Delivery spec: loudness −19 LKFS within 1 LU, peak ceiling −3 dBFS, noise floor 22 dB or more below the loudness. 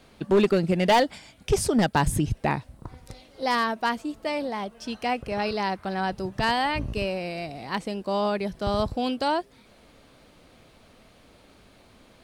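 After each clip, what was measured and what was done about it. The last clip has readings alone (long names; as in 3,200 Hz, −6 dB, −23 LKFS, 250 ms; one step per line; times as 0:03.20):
share of clipped samples 0.5%; peaks flattened at −14.0 dBFS; integrated loudness −26.0 LKFS; sample peak −14.0 dBFS; target loudness −19.0 LKFS
→ clipped peaks rebuilt −14 dBFS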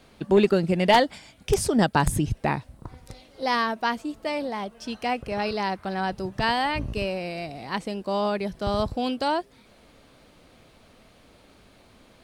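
share of clipped samples 0.0%; integrated loudness −25.5 LKFS; sample peak −5.0 dBFS; target loudness −19.0 LKFS
→ level +6.5 dB
brickwall limiter −3 dBFS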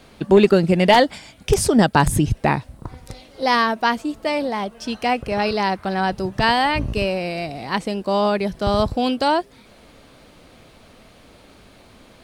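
integrated loudness −19.5 LKFS; sample peak −3.0 dBFS; background noise floor −49 dBFS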